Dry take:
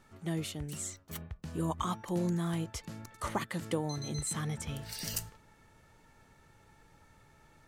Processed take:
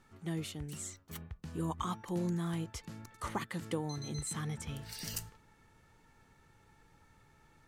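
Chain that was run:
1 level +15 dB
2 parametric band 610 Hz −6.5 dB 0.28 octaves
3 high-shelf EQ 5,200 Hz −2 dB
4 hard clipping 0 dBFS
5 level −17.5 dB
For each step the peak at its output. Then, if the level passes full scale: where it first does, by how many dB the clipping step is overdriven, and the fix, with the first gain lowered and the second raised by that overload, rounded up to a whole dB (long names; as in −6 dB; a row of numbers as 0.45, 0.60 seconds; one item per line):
−4.0, −3.5, −4.5, −4.5, −22.0 dBFS
no step passes full scale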